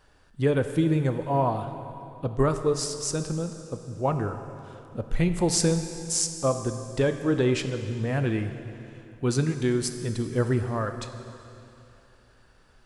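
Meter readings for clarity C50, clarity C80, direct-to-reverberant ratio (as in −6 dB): 8.5 dB, 9.0 dB, 7.5 dB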